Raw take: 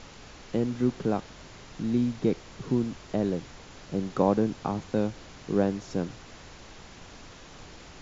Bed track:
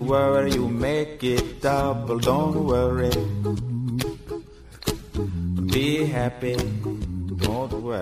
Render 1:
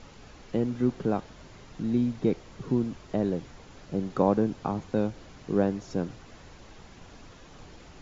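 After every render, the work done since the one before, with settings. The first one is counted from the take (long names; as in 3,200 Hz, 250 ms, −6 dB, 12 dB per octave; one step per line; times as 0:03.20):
broadband denoise 6 dB, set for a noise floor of −48 dBFS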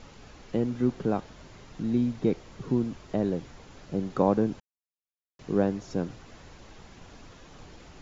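0:04.60–0:05.39: silence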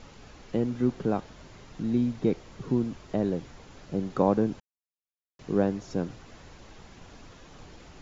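no processing that can be heard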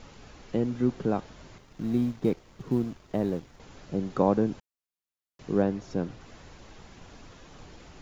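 0:01.58–0:03.60: mu-law and A-law mismatch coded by A
0:05.62–0:06.21: high-frequency loss of the air 57 metres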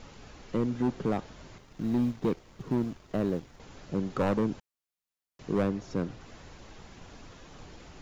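hard clipping −21 dBFS, distortion −10 dB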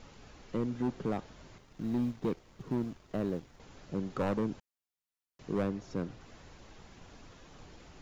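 level −4.5 dB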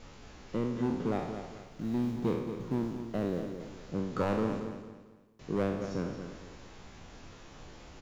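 peak hold with a decay on every bin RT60 0.82 s
on a send: repeating echo 224 ms, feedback 34%, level −9 dB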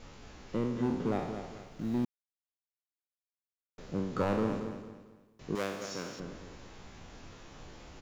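0:02.05–0:03.78: silence
0:05.55–0:06.20: spectral tilt +4 dB per octave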